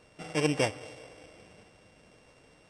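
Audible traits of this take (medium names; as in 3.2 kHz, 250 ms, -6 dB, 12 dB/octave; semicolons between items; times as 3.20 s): a buzz of ramps at a fixed pitch in blocks of 16 samples; Vorbis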